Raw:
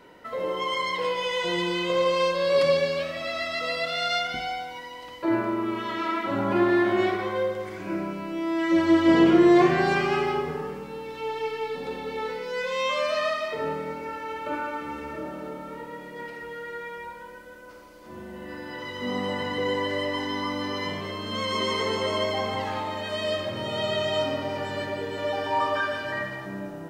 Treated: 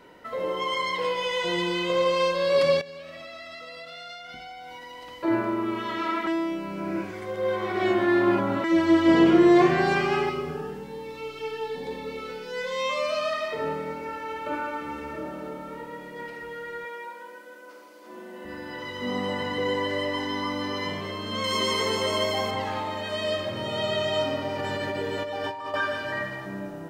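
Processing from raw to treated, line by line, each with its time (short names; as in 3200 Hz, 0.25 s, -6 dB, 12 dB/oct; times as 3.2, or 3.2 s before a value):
2.81–5.21 compressor 16:1, threshold -37 dBFS
6.27–8.64 reverse
10.29–13.33 cascading phaser rising 1.1 Hz
16.85–18.45 HPF 250 Hz 24 dB/oct
21.44–22.51 high shelf 6000 Hz +11.5 dB
24.59–25.74 negative-ratio compressor -31 dBFS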